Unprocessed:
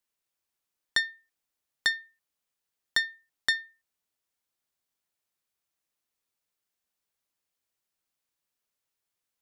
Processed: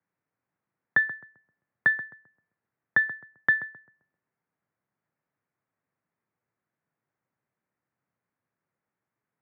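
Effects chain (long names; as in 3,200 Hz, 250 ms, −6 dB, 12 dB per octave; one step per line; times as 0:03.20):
parametric band 180 Hz +11 dB 1.2 octaves
feedback echo with a low-pass in the loop 131 ms, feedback 37%, low-pass 1,300 Hz, level −11.5 dB
single-sideband voice off tune −55 Hz 170–2,100 Hz
level +6 dB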